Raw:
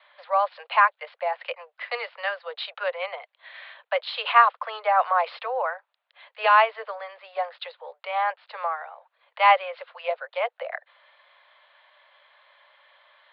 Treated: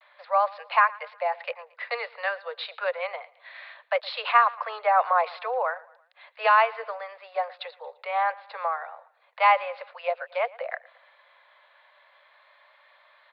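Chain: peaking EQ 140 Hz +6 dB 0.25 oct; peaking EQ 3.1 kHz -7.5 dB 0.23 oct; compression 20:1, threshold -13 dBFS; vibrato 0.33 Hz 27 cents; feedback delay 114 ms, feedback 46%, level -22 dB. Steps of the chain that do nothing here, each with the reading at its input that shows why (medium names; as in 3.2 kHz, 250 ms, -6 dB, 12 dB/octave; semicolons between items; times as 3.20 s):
peaking EQ 140 Hz: input has nothing below 400 Hz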